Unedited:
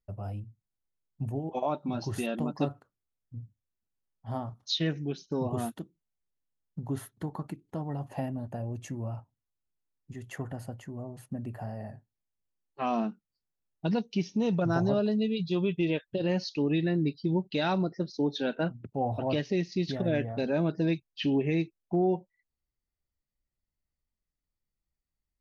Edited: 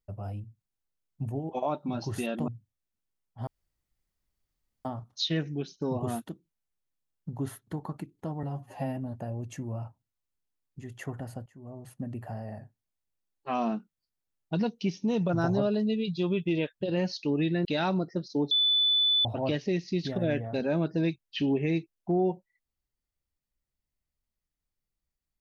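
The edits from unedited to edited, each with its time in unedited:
0:02.48–0:03.36: remove
0:04.35: splice in room tone 1.38 s
0:07.93–0:08.29: time-stretch 1.5×
0:10.78–0:11.19: fade in, from −21.5 dB
0:16.97–0:17.49: remove
0:18.35–0:19.09: beep over 3,490 Hz −21 dBFS

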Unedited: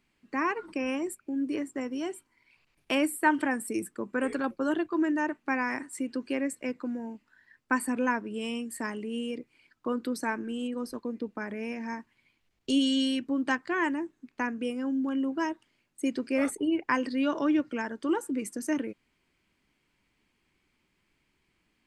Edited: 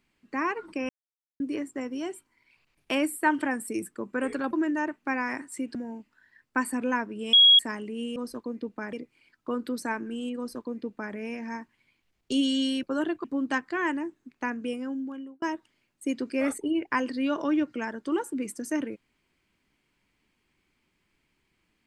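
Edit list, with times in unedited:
0:00.89–0:01.40: silence
0:04.53–0:04.94: move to 0:13.21
0:06.16–0:06.90: remove
0:08.48–0:08.74: beep over 3,310 Hz −12.5 dBFS
0:10.75–0:11.52: duplicate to 0:09.31
0:14.71–0:15.39: fade out

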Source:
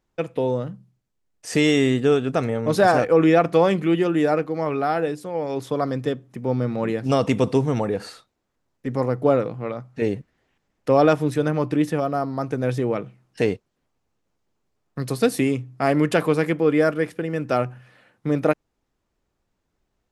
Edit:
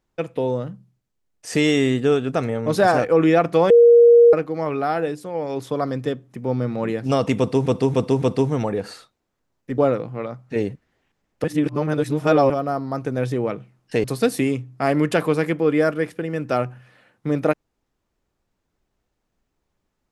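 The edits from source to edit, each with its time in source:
0:03.70–0:04.33: beep over 472 Hz −7 dBFS
0:07.38–0:07.66: repeat, 4 plays
0:08.94–0:09.24: remove
0:10.90–0:11.96: reverse
0:13.50–0:15.04: remove

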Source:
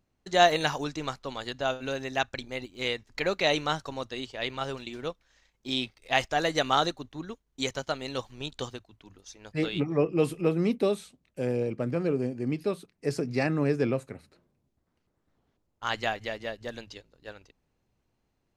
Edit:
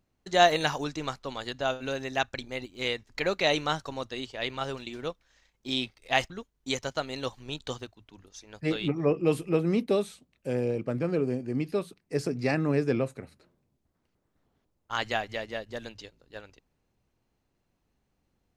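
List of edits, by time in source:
0:06.30–0:07.22: remove

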